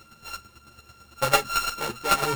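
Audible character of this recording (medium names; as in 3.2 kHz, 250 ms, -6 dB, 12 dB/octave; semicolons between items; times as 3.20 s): a buzz of ramps at a fixed pitch in blocks of 32 samples; chopped level 9 Hz, depth 60%, duty 15%; aliases and images of a low sample rate 11 kHz, jitter 0%; a shimmering, thickened sound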